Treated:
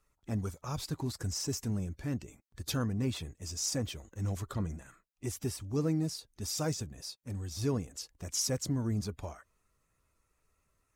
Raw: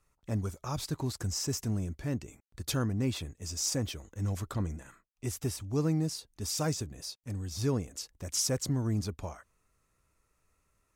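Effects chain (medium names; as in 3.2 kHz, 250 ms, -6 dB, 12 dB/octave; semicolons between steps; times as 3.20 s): coarse spectral quantiser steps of 15 dB; trim -1.5 dB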